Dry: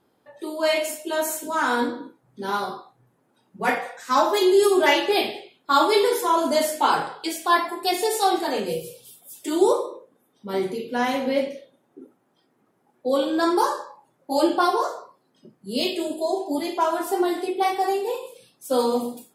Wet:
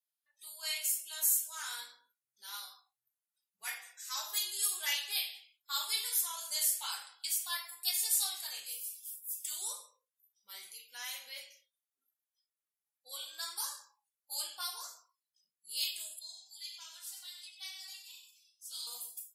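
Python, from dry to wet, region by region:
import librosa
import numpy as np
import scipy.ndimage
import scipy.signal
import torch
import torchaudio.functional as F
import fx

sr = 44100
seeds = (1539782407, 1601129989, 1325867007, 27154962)

y = fx.chain(x, sr, fx.bandpass_q(hz=4000.0, q=1.2),
    fx.echo_single(ms=94, db=-7.0), at=(16.19, 18.87))
y = fx.tone_stack(y, sr, knobs='10-0-10')
y = fx.noise_reduce_blind(y, sr, reduce_db=13)
y = np.diff(y, prepend=0.0)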